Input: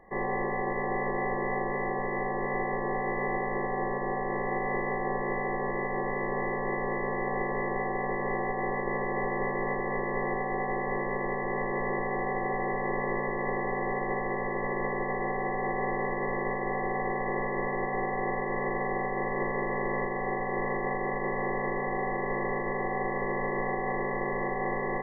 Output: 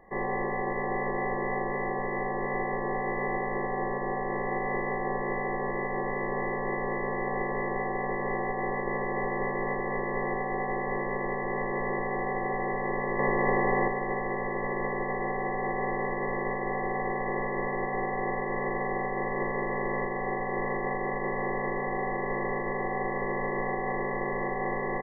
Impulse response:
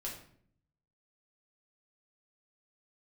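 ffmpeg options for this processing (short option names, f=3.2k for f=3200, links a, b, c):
-filter_complex "[0:a]asettb=1/sr,asplit=3[a][b][c];[a]atrim=end=13.194[d];[b]atrim=start=13.19:end=13.88,asetpts=PTS-STARTPTS,afade=t=in:d=0.004:c=qsin,afade=t=out:st=0.686:d=0.004:c=qsin,acontrast=36[e];[c]atrim=start=13.876[f];[d][e]acrossfade=d=0.004:c1=hsin:c2=qsin[g];[g][f]acrossfade=d=0.004:c1=qsin:c2=hsin,aresample=8000,aresample=44100"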